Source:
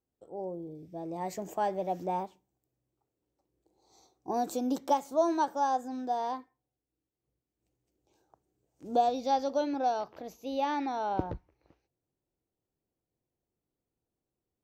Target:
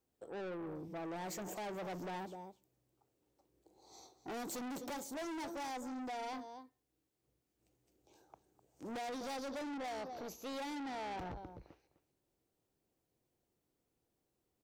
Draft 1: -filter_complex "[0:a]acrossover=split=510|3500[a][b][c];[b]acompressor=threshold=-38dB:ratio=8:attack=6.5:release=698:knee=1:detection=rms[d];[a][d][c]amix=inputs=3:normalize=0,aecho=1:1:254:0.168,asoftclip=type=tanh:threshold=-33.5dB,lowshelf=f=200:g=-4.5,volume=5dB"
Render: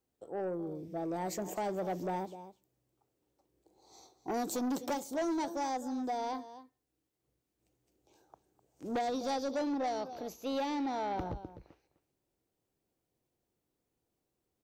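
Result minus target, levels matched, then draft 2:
soft clip: distortion -7 dB
-filter_complex "[0:a]acrossover=split=510|3500[a][b][c];[b]acompressor=threshold=-38dB:ratio=8:attack=6.5:release=698:knee=1:detection=rms[d];[a][d][c]amix=inputs=3:normalize=0,aecho=1:1:254:0.168,asoftclip=type=tanh:threshold=-45dB,lowshelf=f=200:g=-4.5,volume=5dB"

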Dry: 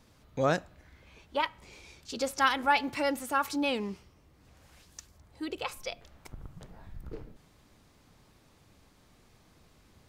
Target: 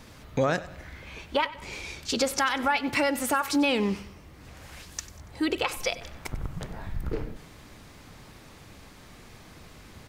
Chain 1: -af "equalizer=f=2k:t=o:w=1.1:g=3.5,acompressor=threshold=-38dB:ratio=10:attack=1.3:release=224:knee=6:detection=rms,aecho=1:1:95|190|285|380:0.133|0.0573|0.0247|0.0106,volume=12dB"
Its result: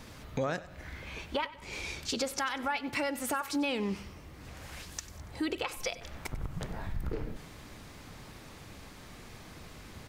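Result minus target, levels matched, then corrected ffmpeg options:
compressor: peak gain reduction +7.5 dB
-af "equalizer=f=2k:t=o:w=1.1:g=3.5,acompressor=threshold=-29.5dB:ratio=10:attack=1.3:release=224:knee=6:detection=rms,aecho=1:1:95|190|285|380:0.133|0.0573|0.0247|0.0106,volume=12dB"

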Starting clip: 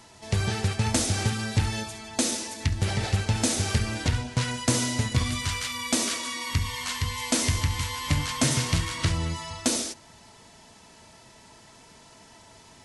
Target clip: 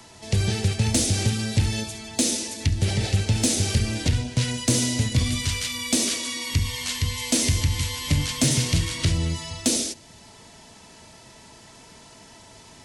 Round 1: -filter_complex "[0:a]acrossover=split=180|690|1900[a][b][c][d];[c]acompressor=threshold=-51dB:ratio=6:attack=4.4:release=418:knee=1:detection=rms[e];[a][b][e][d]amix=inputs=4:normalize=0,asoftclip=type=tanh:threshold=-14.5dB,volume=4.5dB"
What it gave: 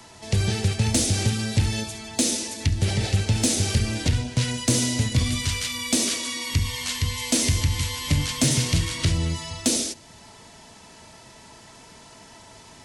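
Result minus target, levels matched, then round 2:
compressor: peak gain reduction -5 dB
-filter_complex "[0:a]acrossover=split=180|690|1900[a][b][c][d];[c]acompressor=threshold=-57dB:ratio=6:attack=4.4:release=418:knee=1:detection=rms[e];[a][b][e][d]amix=inputs=4:normalize=0,asoftclip=type=tanh:threshold=-14.5dB,volume=4.5dB"

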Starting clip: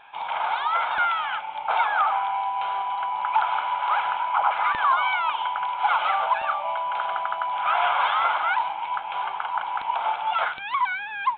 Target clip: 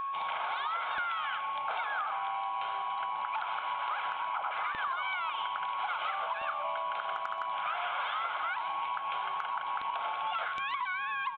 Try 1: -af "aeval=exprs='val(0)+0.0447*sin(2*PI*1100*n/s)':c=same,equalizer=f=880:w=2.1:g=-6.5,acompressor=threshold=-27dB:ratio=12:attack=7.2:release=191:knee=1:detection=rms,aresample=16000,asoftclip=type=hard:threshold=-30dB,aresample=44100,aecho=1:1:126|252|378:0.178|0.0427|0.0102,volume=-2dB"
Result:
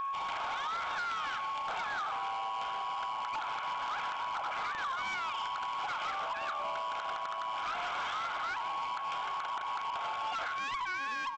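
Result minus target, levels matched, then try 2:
hard clip: distortion +36 dB
-af "aeval=exprs='val(0)+0.0447*sin(2*PI*1100*n/s)':c=same,equalizer=f=880:w=2.1:g=-6.5,acompressor=threshold=-27dB:ratio=12:attack=7.2:release=191:knee=1:detection=rms,aresample=16000,asoftclip=type=hard:threshold=-19.5dB,aresample=44100,aecho=1:1:126|252|378:0.178|0.0427|0.0102,volume=-2dB"

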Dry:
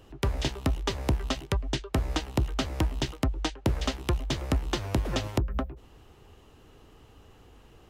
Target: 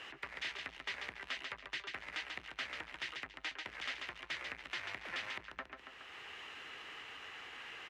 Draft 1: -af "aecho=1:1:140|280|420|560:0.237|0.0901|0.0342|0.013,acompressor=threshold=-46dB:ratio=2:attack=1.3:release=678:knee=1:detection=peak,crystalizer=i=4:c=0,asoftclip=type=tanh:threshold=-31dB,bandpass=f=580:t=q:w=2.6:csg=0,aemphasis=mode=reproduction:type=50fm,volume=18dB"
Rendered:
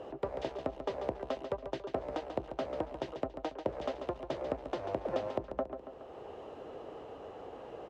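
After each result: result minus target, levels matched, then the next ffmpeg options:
500 Hz band +17.0 dB; soft clip: distortion -6 dB
-af "aecho=1:1:140|280|420|560:0.237|0.0901|0.0342|0.013,acompressor=threshold=-46dB:ratio=2:attack=1.3:release=678:knee=1:detection=peak,crystalizer=i=4:c=0,asoftclip=type=tanh:threshold=-31dB,bandpass=f=2k:t=q:w=2.6:csg=0,aemphasis=mode=reproduction:type=50fm,volume=18dB"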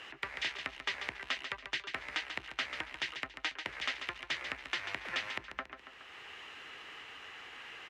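soft clip: distortion -6 dB
-af "aecho=1:1:140|280|420|560:0.237|0.0901|0.0342|0.013,acompressor=threshold=-46dB:ratio=2:attack=1.3:release=678:knee=1:detection=peak,crystalizer=i=4:c=0,asoftclip=type=tanh:threshold=-42dB,bandpass=f=2k:t=q:w=2.6:csg=0,aemphasis=mode=reproduction:type=50fm,volume=18dB"

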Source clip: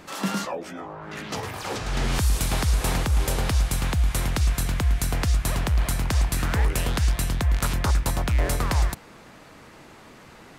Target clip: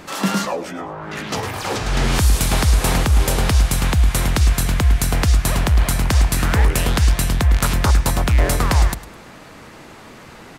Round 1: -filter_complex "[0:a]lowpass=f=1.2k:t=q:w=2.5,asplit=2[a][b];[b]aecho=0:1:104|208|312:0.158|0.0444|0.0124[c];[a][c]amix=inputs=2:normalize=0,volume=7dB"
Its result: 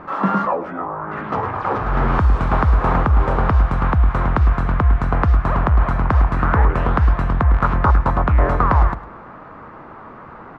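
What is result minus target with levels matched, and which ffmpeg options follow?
1000 Hz band +6.0 dB
-filter_complex "[0:a]asplit=2[a][b];[b]aecho=0:1:104|208|312:0.158|0.0444|0.0124[c];[a][c]amix=inputs=2:normalize=0,volume=7dB"

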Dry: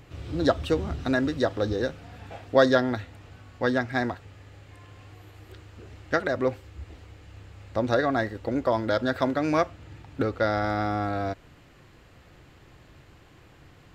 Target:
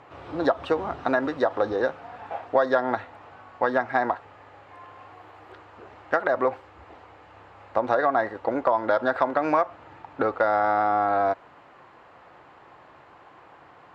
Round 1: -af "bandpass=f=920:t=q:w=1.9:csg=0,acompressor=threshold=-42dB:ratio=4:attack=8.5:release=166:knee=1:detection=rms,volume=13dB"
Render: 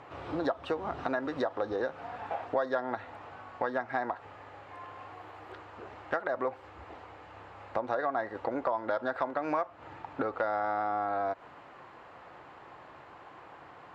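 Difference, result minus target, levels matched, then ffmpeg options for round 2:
compressor: peak gain reduction +9 dB
-af "bandpass=f=920:t=q:w=1.9:csg=0,acompressor=threshold=-30dB:ratio=4:attack=8.5:release=166:knee=1:detection=rms,volume=13dB"

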